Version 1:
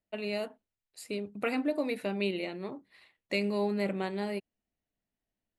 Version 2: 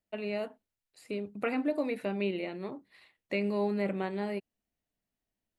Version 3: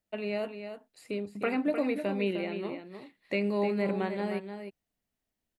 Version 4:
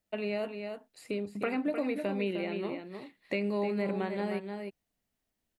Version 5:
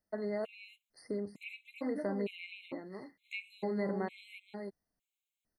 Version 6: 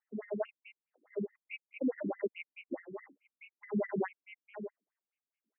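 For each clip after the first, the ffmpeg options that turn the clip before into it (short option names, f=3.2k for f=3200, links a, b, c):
-filter_complex "[0:a]acrossover=split=2900[a][b];[b]acompressor=threshold=-56dB:ratio=4:attack=1:release=60[c];[a][c]amix=inputs=2:normalize=0"
-af "aecho=1:1:305:0.376,volume=1.5dB"
-af "acompressor=threshold=-33dB:ratio=2,volume=2dB"
-af "afftfilt=real='re*gt(sin(2*PI*1.1*pts/sr)*(1-2*mod(floor(b*sr/1024/2100),2)),0)':imag='im*gt(sin(2*PI*1.1*pts/sr)*(1-2*mod(floor(b*sr/1024/2100),2)),0)':win_size=1024:overlap=0.75,volume=-2.5dB"
-af "asuperstop=centerf=3600:order=4:qfactor=1.8,afftfilt=real='re*between(b*sr/1024,240*pow(2600/240,0.5+0.5*sin(2*PI*4.7*pts/sr))/1.41,240*pow(2600/240,0.5+0.5*sin(2*PI*4.7*pts/sr))*1.41)':imag='im*between(b*sr/1024,240*pow(2600/240,0.5+0.5*sin(2*PI*4.7*pts/sr))/1.41,240*pow(2600/240,0.5+0.5*sin(2*PI*4.7*pts/sr))*1.41)':win_size=1024:overlap=0.75,volume=7dB"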